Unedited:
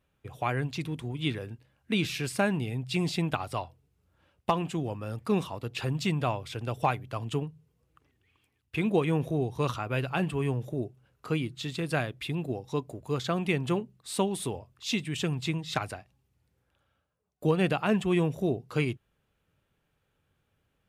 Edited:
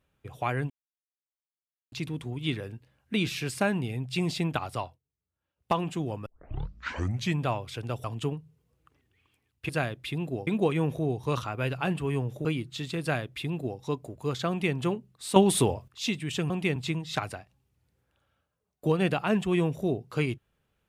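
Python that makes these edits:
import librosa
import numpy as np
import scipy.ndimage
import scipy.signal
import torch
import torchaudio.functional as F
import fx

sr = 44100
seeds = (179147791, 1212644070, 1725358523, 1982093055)

y = fx.edit(x, sr, fx.insert_silence(at_s=0.7, length_s=1.22),
    fx.fade_down_up(start_s=3.57, length_s=0.97, db=-20.0, fade_s=0.2, curve='qsin'),
    fx.tape_start(start_s=5.04, length_s=1.13),
    fx.cut(start_s=6.82, length_s=0.32),
    fx.cut(start_s=10.77, length_s=0.53),
    fx.duplicate(start_s=11.86, length_s=0.78, to_s=8.79),
    fx.duplicate(start_s=13.34, length_s=0.26, to_s=15.35),
    fx.clip_gain(start_s=14.21, length_s=0.52, db=9.5), tone=tone)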